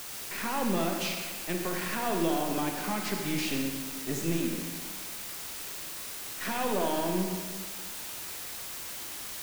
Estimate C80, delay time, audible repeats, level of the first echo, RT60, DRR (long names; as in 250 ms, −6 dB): 4.5 dB, no echo audible, no echo audible, no echo audible, 1.5 s, 2.0 dB